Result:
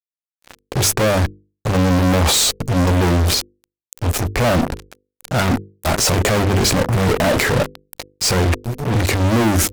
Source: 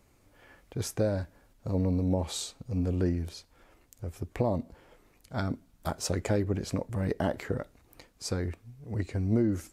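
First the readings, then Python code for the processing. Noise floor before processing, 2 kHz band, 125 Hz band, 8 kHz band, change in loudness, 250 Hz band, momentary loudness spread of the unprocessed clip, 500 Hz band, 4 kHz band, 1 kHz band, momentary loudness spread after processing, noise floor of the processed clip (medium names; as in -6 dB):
-64 dBFS, +22.0 dB, +14.0 dB, +21.0 dB, +14.5 dB, +12.0 dB, 13 LU, +13.5 dB, +22.0 dB, +19.0 dB, 10 LU, under -85 dBFS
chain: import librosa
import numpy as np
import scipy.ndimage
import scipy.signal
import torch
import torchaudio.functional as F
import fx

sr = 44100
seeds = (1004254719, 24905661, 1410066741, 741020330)

y = fx.fuzz(x, sr, gain_db=48.0, gate_db=-48.0)
y = fx.transient(y, sr, attack_db=-2, sustain_db=7)
y = fx.hum_notches(y, sr, base_hz=50, count=10)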